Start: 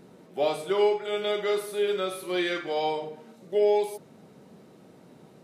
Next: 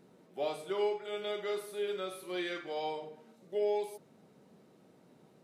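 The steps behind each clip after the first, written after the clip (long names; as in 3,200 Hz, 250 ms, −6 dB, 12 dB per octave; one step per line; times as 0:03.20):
low-shelf EQ 67 Hz −6.5 dB
level −9 dB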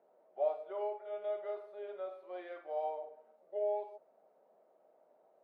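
four-pole ladder band-pass 700 Hz, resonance 65%
level +5.5 dB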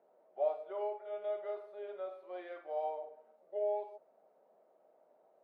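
no processing that can be heard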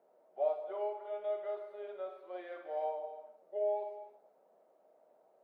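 reverb whose tail is shaped and stops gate 340 ms flat, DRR 9 dB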